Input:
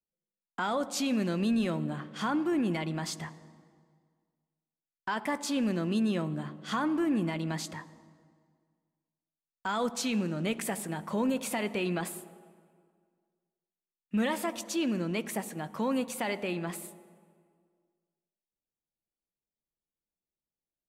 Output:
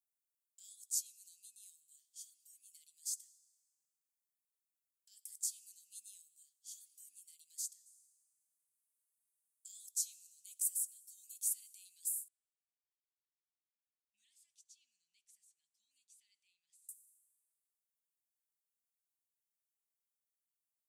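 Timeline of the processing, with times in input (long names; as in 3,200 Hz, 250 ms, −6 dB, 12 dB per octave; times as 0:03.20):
0:00.98–0:05.19: downward compressor 3 to 1, threshold −30 dBFS
0:07.86–0:09.69: parametric band 9,800 Hz +12 dB
0:12.28–0:16.89: low-pass filter 2,000 Hz
whole clip: inverse Chebyshev high-pass filter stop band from 1,300 Hz, stop band 80 dB; level +5 dB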